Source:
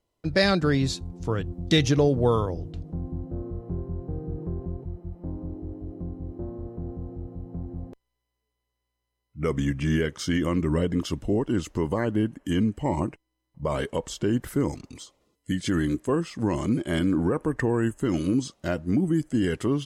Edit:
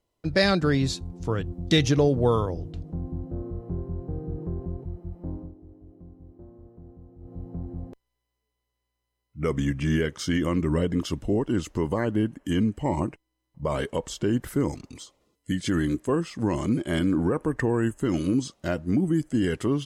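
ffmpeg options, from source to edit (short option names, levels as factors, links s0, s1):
-filter_complex "[0:a]asplit=3[s0][s1][s2];[s0]atrim=end=5.54,asetpts=PTS-STARTPTS,afade=t=out:st=5.34:d=0.2:silence=0.237137[s3];[s1]atrim=start=5.54:end=7.19,asetpts=PTS-STARTPTS,volume=0.237[s4];[s2]atrim=start=7.19,asetpts=PTS-STARTPTS,afade=t=in:d=0.2:silence=0.237137[s5];[s3][s4][s5]concat=n=3:v=0:a=1"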